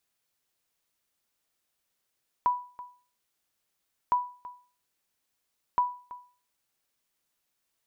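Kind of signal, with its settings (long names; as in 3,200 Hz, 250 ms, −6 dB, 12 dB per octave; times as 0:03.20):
ping with an echo 985 Hz, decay 0.40 s, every 1.66 s, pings 3, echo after 0.33 s, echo −18 dB −17 dBFS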